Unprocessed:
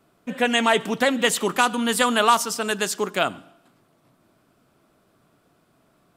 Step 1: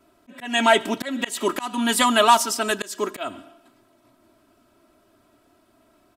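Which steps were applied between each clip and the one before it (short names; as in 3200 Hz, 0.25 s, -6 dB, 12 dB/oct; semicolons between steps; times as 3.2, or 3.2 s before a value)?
comb 3.1 ms, depth 85%; auto swell 0.24 s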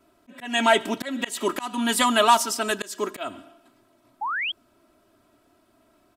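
painted sound rise, 4.21–4.52, 780–3400 Hz -25 dBFS; gain -2 dB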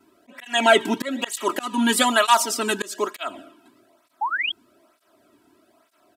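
tape flanging out of phase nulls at 1.1 Hz, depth 1.8 ms; gain +5.5 dB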